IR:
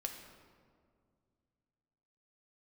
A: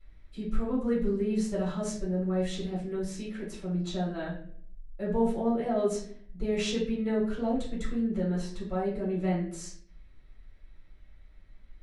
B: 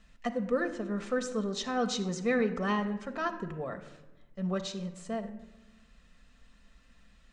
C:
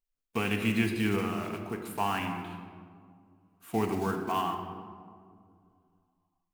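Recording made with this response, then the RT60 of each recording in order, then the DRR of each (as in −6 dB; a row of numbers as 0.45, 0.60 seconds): C; 0.55, 1.1, 2.1 seconds; −9.5, 5.5, 3.0 decibels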